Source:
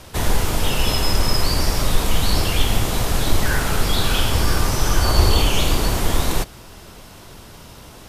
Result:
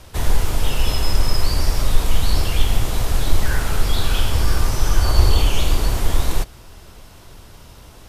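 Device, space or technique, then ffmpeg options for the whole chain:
low shelf boost with a cut just above: -af "lowshelf=frequency=98:gain=8,equalizer=frequency=190:width_type=o:width=1.2:gain=-3,volume=-4dB"

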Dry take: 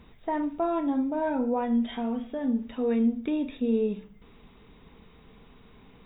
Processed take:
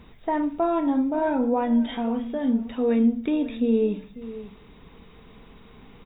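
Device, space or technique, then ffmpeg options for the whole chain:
ducked delay: -filter_complex "[0:a]asplit=3[link_01][link_02][link_03];[link_02]adelay=544,volume=-6dB[link_04];[link_03]apad=whole_len=290986[link_05];[link_04][link_05]sidechaincompress=threshold=-37dB:ratio=4:attack=16:release=1290[link_06];[link_01][link_06]amix=inputs=2:normalize=0,volume=4dB"

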